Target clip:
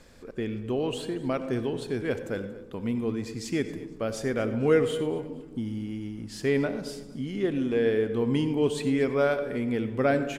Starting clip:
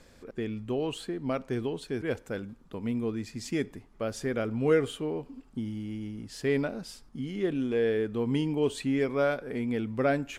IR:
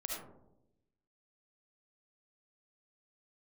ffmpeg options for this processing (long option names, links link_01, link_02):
-filter_complex "[0:a]aecho=1:1:233|466|699:0.106|0.0339|0.0108,asplit=2[link_01][link_02];[1:a]atrim=start_sample=2205,asetrate=35721,aresample=44100[link_03];[link_02][link_03]afir=irnorm=-1:irlink=0,volume=-9dB[link_04];[link_01][link_04]amix=inputs=2:normalize=0"